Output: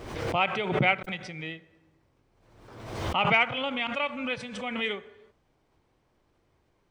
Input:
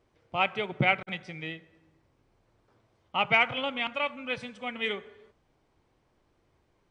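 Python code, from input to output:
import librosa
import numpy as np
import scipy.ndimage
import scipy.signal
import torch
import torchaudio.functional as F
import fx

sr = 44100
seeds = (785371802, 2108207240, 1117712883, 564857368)

y = fx.pre_swell(x, sr, db_per_s=51.0)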